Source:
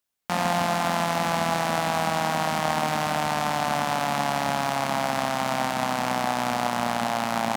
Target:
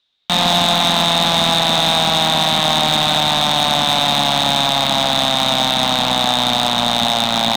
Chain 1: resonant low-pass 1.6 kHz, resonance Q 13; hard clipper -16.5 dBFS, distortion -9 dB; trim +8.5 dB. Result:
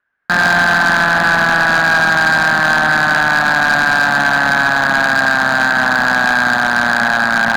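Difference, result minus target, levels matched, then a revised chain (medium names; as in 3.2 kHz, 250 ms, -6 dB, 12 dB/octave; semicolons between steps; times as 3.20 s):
2 kHz band +13.0 dB
resonant low-pass 3.7 kHz, resonance Q 13; hard clipper -16.5 dBFS, distortion -9 dB; trim +8.5 dB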